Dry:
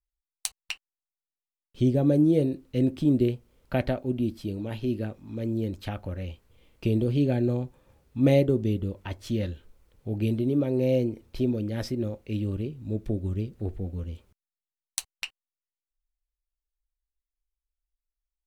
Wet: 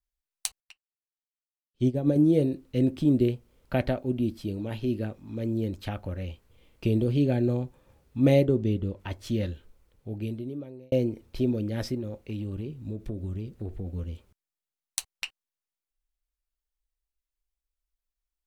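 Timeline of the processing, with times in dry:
0:00.60–0:02.16: expander for the loud parts 2.5 to 1, over −36 dBFS
0:08.45–0:09.00: high-shelf EQ 8,300 Hz −10 dB
0:09.52–0:10.92: fade out linear
0:11.96–0:13.88: downward compressor, threshold −29 dBFS

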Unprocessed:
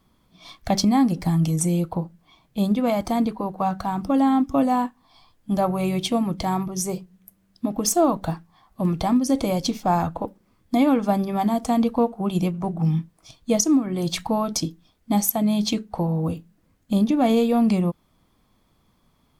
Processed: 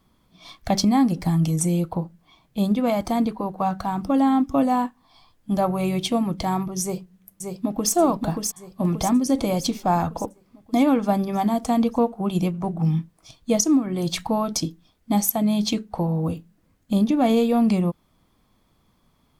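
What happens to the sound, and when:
0:06.82–0:07.93: delay throw 580 ms, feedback 55%, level −4.5 dB

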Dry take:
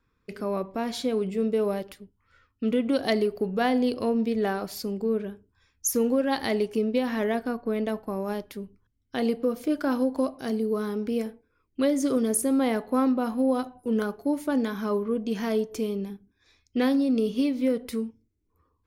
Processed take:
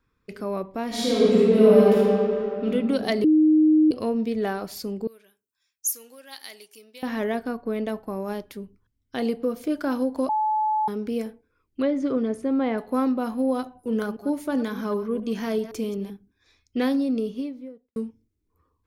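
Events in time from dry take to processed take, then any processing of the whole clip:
0:00.87–0:02.64: thrown reverb, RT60 2.8 s, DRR −9 dB
0:03.24–0:03.91: beep over 310 Hz −13.5 dBFS
0:05.07–0:07.03: first difference
0:10.29–0:10.88: beep over 861 Hz −20 dBFS
0:11.82–0:12.78: low-pass filter 2,600 Hz
0:13.78–0:16.10: delay that plays each chunk backwards 129 ms, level −12.5 dB
0:16.91–0:17.96: fade out and dull

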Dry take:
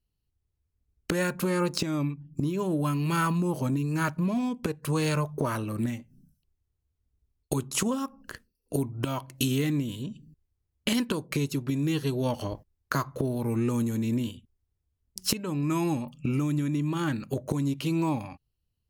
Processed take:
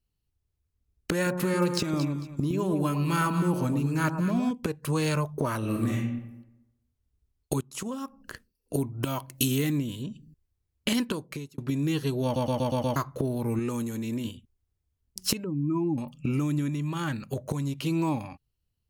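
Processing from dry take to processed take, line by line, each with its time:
0:01.15–0:04.51: delay that swaps between a low-pass and a high-pass 112 ms, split 1,100 Hz, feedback 51%, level −5.5 dB
0:05.58–0:05.98: thrown reverb, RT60 0.94 s, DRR −3 dB
0:07.61–0:08.34: fade in, from −16.5 dB
0:08.98–0:09.79: high-shelf EQ 9,700 Hz +10 dB
0:11.03–0:11.58: fade out
0:12.24: stutter in place 0.12 s, 6 plays
0:13.59–0:14.25: low-shelf EQ 240 Hz −7.5 dB
0:15.44–0:15.98: expanding power law on the bin magnitudes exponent 1.9
0:16.69–0:17.82: parametric band 310 Hz −6 dB

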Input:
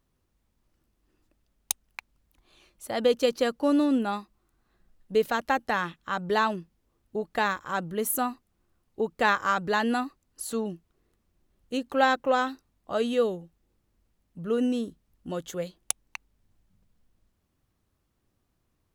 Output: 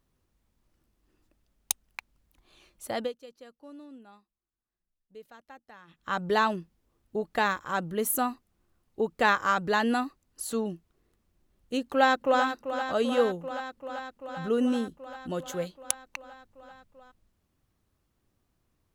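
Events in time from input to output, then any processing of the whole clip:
0:02.91–0:06.09: duck −24 dB, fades 0.22 s
0:11.82–0:12.43: delay throw 390 ms, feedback 80%, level −9.5 dB

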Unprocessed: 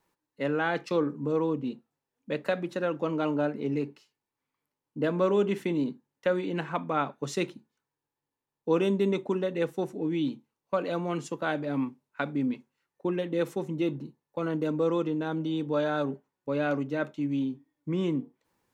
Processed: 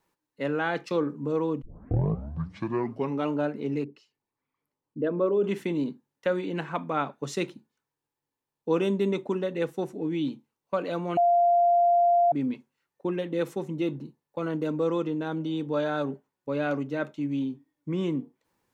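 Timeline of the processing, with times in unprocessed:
0:01.62: tape start 1.68 s
0:03.84–0:05.44: spectral envelope exaggerated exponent 1.5
0:11.17–0:12.32: beep over 695 Hz −17.5 dBFS

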